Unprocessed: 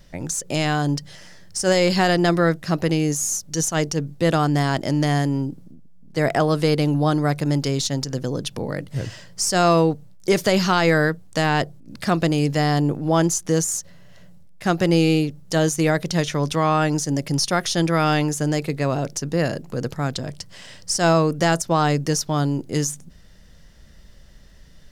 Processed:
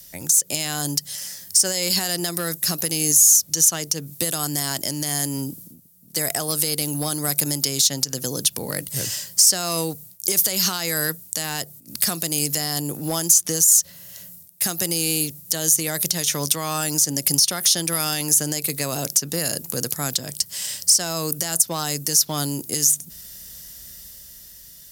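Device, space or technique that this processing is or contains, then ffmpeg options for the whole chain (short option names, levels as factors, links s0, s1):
FM broadcast chain: -filter_complex "[0:a]highpass=46,dynaudnorm=f=230:g=11:m=2.11,acrossover=split=130|5000[s0][s1][s2];[s0]acompressor=threshold=0.0178:ratio=4[s3];[s1]acompressor=threshold=0.141:ratio=4[s4];[s2]acompressor=threshold=0.0178:ratio=4[s5];[s3][s4][s5]amix=inputs=3:normalize=0,aemphasis=mode=production:type=75fm,alimiter=limit=0.335:level=0:latency=1:release=241,asoftclip=type=hard:threshold=0.237,lowpass=f=15000:w=0.5412,lowpass=f=15000:w=1.3066,aemphasis=mode=production:type=75fm,volume=0.596"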